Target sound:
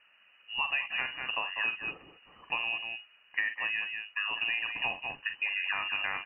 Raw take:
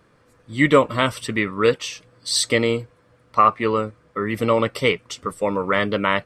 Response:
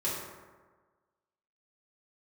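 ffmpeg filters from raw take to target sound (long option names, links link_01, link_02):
-af "aecho=1:1:43.73|195.3:0.355|0.282,aeval=exprs='0.891*(cos(1*acos(clip(val(0)/0.891,-1,1)))-cos(1*PI/2))+0.00794*(cos(6*acos(clip(val(0)/0.891,-1,1)))-cos(6*PI/2))':channel_layout=same,acompressor=threshold=-23dB:ratio=6,lowpass=frequency=2600:width_type=q:width=0.5098,lowpass=frequency=2600:width_type=q:width=0.6013,lowpass=frequency=2600:width_type=q:width=0.9,lowpass=frequency=2600:width_type=q:width=2.563,afreqshift=-3000,volume=-6dB"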